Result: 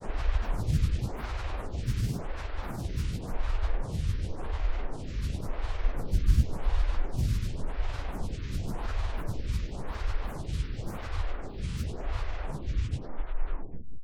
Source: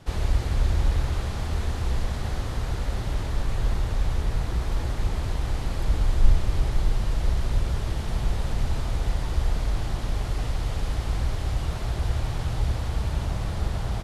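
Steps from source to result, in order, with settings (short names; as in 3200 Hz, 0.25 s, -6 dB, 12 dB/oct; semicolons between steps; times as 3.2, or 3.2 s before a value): tape stop at the end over 1.92 s; formant shift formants -6 st; grains, grains 20/s, pitch spread up and down by 12 st; photocell phaser 0.92 Hz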